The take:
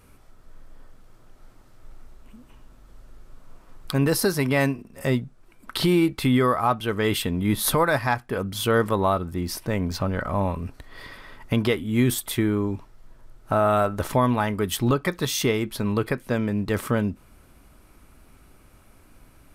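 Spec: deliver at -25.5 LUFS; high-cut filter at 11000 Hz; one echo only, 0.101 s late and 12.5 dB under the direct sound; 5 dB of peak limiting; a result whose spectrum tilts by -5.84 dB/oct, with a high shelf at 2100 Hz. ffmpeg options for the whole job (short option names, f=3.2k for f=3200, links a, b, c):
-af "lowpass=11k,highshelf=f=2.1k:g=-6,alimiter=limit=-15.5dB:level=0:latency=1,aecho=1:1:101:0.237,volume=1.5dB"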